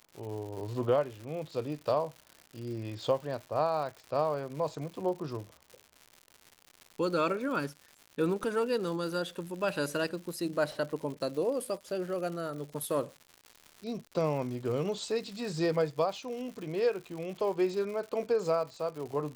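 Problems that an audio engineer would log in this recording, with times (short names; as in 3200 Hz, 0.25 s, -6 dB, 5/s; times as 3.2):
crackle 190/s -40 dBFS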